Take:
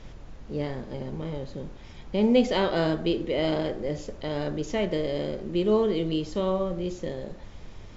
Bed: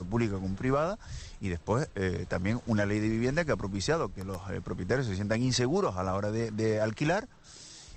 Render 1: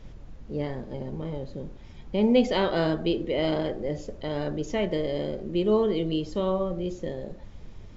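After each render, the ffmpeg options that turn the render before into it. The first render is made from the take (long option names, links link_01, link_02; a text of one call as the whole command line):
ffmpeg -i in.wav -af "afftdn=noise_reduction=6:noise_floor=-45" out.wav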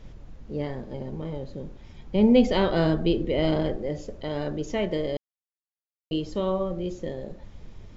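ffmpeg -i in.wav -filter_complex "[0:a]asettb=1/sr,asplit=3[link_01][link_02][link_03];[link_01]atrim=end=2.154[link_04];[link_02]atrim=start=2.15:end=3.76,asetpts=PTS-STARTPTS,afade=type=in:duration=0.004:curve=qsin,afade=type=out:start_time=1.606:duration=0.004:curve=qsin,lowshelf=frequency=200:gain=9[link_05];[link_03]atrim=start=3.756[link_06];[link_04][link_05]acrossfade=duration=0.004:curve1=hsin:curve2=qsin[link_07];[link_07][link_06]acrossfade=duration=0.004:curve1=qsin:curve2=hsin,asplit=3[link_08][link_09][link_10];[link_08]atrim=end=5.17,asetpts=PTS-STARTPTS,afade=type=out:start_time=5.166:duration=0.004:curve=hsin[link_11];[link_09]atrim=start=5.17:end=6.11,asetpts=PTS-STARTPTS,volume=0[link_12];[link_10]atrim=start=6.11,asetpts=PTS-STARTPTS,afade=type=in:duration=0.004:curve=hsin[link_13];[link_11][link_12][link_13]concat=n=3:v=0:a=1" out.wav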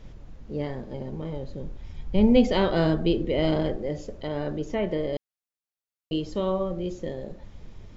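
ffmpeg -i in.wav -filter_complex "[0:a]asettb=1/sr,asplit=3[link_01][link_02][link_03];[link_01]atrim=end=1.264[link_04];[link_02]atrim=start=1.26:end=2.37,asetpts=PTS-STARTPTS,afade=type=in:duration=0.004:curve=qsin,afade=type=out:start_time=1.106:duration=0.004:curve=qsin,asubboost=boost=8:cutoff=140[link_05];[link_03]atrim=start=2.366[link_06];[link_04][link_05]acrossfade=duration=0.004:curve1=hsin:curve2=qsin[link_07];[link_07][link_06]acrossfade=duration=0.004:curve1=qsin:curve2=hsin,asettb=1/sr,asplit=3[link_08][link_09][link_10];[link_08]atrim=end=4.274[link_11];[link_09]atrim=start=4.27:end=5.13,asetpts=PTS-STARTPTS,afade=type=in:duration=0.004:curve=qsin,afade=type=out:start_time=0.856:duration=0.004:curve=qsin,acrossover=split=2500[link_12][link_13];[link_13]acompressor=threshold=-50dB:ratio=4:attack=1:release=60[link_14];[link_12][link_14]amix=inputs=2:normalize=0[link_15];[link_10]atrim=start=5.126[link_16];[link_11][link_15]acrossfade=duration=0.004:curve1=hsin:curve2=qsin[link_17];[link_17][link_16]acrossfade=duration=0.004:curve1=qsin:curve2=hsin" out.wav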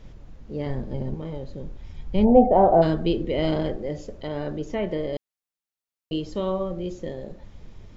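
ffmpeg -i in.wav -filter_complex "[0:a]asettb=1/sr,asplit=3[link_01][link_02][link_03];[link_01]atrim=end=0.664[link_04];[link_02]atrim=start=0.66:end=1.14,asetpts=PTS-STARTPTS,afade=type=in:duration=0.004:curve=qsin,afade=type=out:start_time=0.476:duration=0.004:curve=qsin,lowshelf=frequency=220:gain=10[link_05];[link_03]atrim=start=1.136[link_06];[link_04][link_05]acrossfade=duration=0.004:curve1=hsin:curve2=qsin[link_07];[link_07][link_06]acrossfade=duration=0.004:curve1=qsin:curve2=hsin,asplit=3[link_08][link_09][link_10];[link_08]afade=type=out:start_time=2.24:duration=0.02[link_11];[link_09]lowpass=frequency=740:width_type=q:width=7.5,afade=type=in:start_time=2.24:duration=0.02,afade=type=out:start_time=2.81:duration=0.02[link_12];[link_10]afade=type=in:start_time=2.81:duration=0.02[link_13];[link_11][link_12][link_13]amix=inputs=3:normalize=0" out.wav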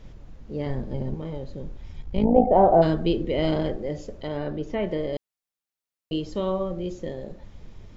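ffmpeg -i in.wav -filter_complex "[0:a]asettb=1/sr,asplit=3[link_01][link_02][link_03];[link_01]atrim=end=2.024[link_04];[link_02]atrim=start=2.02:end=2.48,asetpts=PTS-STARTPTS,afade=type=in:duration=0.004:curve=qsin,afade=type=out:start_time=0.456:duration=0.004:curve=qsin,tremolo=f=55:d=0.71[link_05];[link_03]atrim=start=2.476[link_06];[link_04][link_05]acrossfade=duration=0.004:curve1=hsin:curve2=qsin[link_07];[link_07][link_06]acrossfade=duration=0.004:curve1=qsin:curve2=hsin,asettb=1/sr,asplit=3[link_08][link_09][link_10];[link_08]atrim=end=4.374[link_11];[link_09]atrim=start=4.37:end=4.8,asetpts=PTS-STARTPTS,afade=type=in:duration=0.004:curve=qsin,afade=type=out:start_time=0.426:duration=0.004:curve=qsin,lowpass=4600[link_12];[link_10]atrim=start=4.796[link_13];[link_11][link_12]acrossfade=duration=0.004:curve1=hsin:curve2=qsin[link_14];[link_14][link_13]acrossfade=duration=0.004:curve1=qsin:curve2=hsin" out.wav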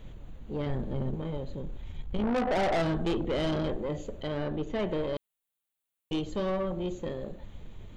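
ffmpeg -i in.wav -af "aexciter=amount=1.1:drive=1.1:freq=2800,aeval=exprs='(tanh(17.8*val(0)+0.25)-tanh(0.25))/17.8':channel_layout=same" out.wav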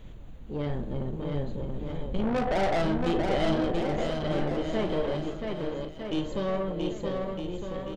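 ffmpeg -i in.wav -filter_complex "[0:a]asplit=2[link_01][link_02];[link_02]adelay=41,volume=-11.5dB[link_03];[link_01][link_03]amix=inputs=2:normalize=0,aecho=1:1:680|1258|1749|2167|2522:0.631|0.398|0.251|0.158|0.1" out.wav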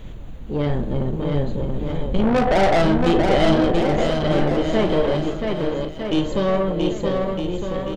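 ffmpeg -i in.wav -af "volume=9.5dB" out.wav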